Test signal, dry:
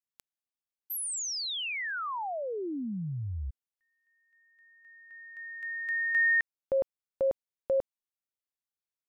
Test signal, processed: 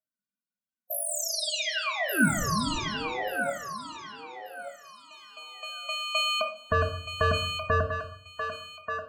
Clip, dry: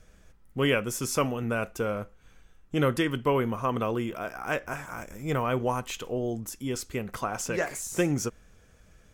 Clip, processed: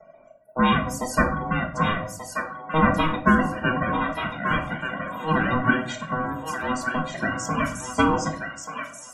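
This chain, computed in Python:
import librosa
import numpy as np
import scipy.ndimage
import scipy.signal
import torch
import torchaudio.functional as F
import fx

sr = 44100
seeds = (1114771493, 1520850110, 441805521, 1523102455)

y = fx.lower_of_two(x, sr, delay_ms=2.3)
y = fx.dereverb_blind(y, sr, rt60_s=1.1)
y = fx.peak_eq(y, sr, hz=840.0, db=9.0, octaves=0.34)
y = fx.spec_topn(y, sr, count=32)
y = y * np.sin(2.0 * np.pi * 630.0 * np.arange(len(y)) / sr)
y = fx.echo_thinned(y, sr, ms=1184, feedback_pct=26, hz=810.0, wet_db=-4.5)
y = fx.room_shoebox(y, sr, seeds[0], volume_m3=660.0, walls='furnished', distance_m=1.5)
y = y * 10.0 ** (7.5 / 20.0)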